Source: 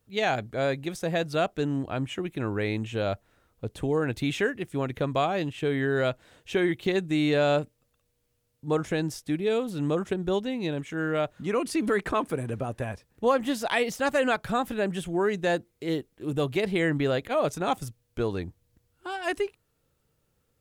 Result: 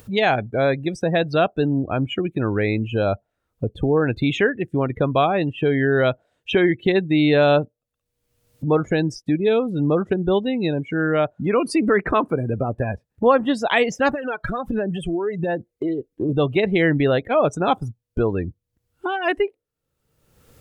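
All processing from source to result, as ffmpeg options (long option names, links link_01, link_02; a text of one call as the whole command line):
ffmpeg -i in.wav -filter_complex "[0:a]asettb=1/sr,asplit=3[link_01][link_02][link_03];[link_01]atrim=end=14.094[link_04];[link_02]atrim=start=14.09:end=16.29,asetpts=PTS-STARTPTS,afade=type=in:duration=0.004:curve=qsin,afade=type=out:start_time=2.196:duration=0.004:curve=qsin,acompressor=threshold=-32dB:ratio=8:attack=3.2:release=140:knee=1:detection=peak,aphaser=in_gain=1:out_gain=1:delay=3.1:decay=0.46:speed=1.4:type=sinusoidal[link_05];[link_03]atrim=start=16.286[link_06];[link_04][link_05]acrossfade=duration=0.004:curve1=hsin:curve2=qsin[link_07];[link_07][link_06]acrossfade=duration=0.004:curve1=qsin:curve2=hsin,afftdn=noise_reduction=29:noise_floor=-37,acompressor=mode=upward:threshold=-26dB:ratio=2.5,volume=7.5dB" out.wav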